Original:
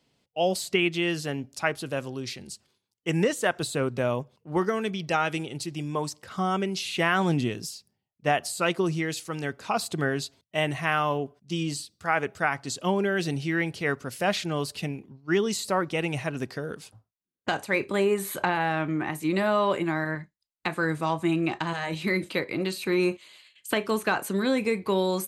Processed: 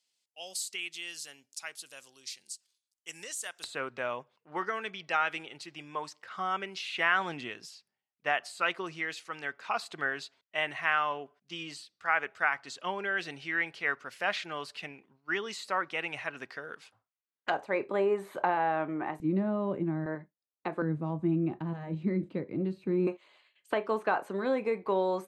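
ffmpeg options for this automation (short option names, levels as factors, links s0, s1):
-af "asetnsamples=n=441:p=0,asendcmd='3.64 bandpass f 1700;17.5 bandpass f 690;19.2 bandpass f 190;20.06 bandpass f 480;20.82 bandpass f 190;23.07 bandpass f 730',bandpass=f=7900:t=q:w=1:csg=0"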